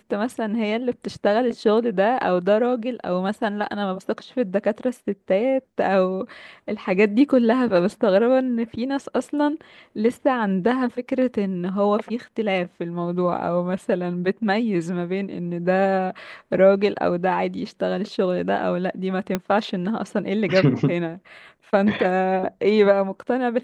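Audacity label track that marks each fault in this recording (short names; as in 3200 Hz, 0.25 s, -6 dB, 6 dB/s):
19.350000	19.350000	pop -8 dBFS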